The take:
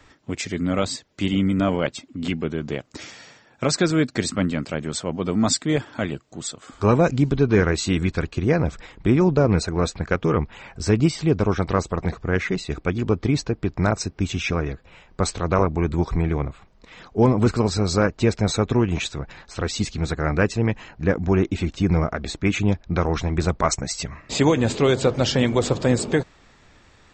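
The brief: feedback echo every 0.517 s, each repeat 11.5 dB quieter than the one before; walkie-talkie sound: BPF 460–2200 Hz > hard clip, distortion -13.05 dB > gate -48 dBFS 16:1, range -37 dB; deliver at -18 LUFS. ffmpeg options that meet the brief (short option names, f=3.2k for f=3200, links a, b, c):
-af "highpass=460,lowpass=2.2k,aecho=1:1:517|1034|1551:0.266|0.0718|0.0194,asoftclip=type=hard:threshold=-17.5dB,agate=range=-37dB:threshold=-48dB:ratio=16,volume=11.5dB"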